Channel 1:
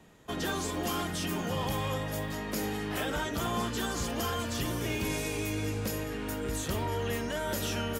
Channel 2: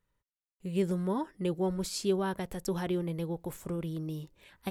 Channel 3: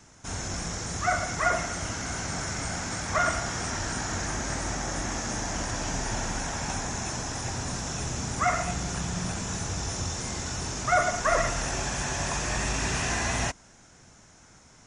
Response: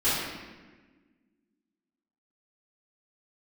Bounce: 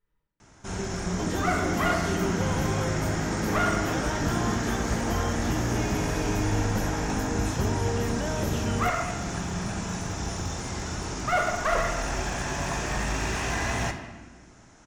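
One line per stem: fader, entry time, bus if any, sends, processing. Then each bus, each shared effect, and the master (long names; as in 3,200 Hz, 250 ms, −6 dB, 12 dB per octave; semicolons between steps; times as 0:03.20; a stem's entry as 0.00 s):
−2.0 dB, 0.90 s, no send, low-shelf EQ 500 Hz +9 dB
−8.5 dB, 0.00 s, send −4.5 dB, downward compressor, threshold −34 dBFS, peak gain reduction 10.5 dB
0.0 dB, 0.40 s, send −18 dB, asymmetric clip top −25.5 dBFS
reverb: on, RT60 1.4 s, pre-delay 3 ms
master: parametric band 8,400 Hz −6 dB 2.3 octaves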